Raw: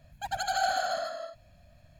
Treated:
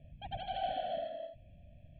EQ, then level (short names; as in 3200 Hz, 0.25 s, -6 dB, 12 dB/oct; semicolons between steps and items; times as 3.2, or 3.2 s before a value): Butterworth band-stop 1200 Hz, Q 0.63; steep low-pass 3300 Hz 72 dB/oct; bell 2300 Hz -4 dB 1.8 oct; +2.0 dB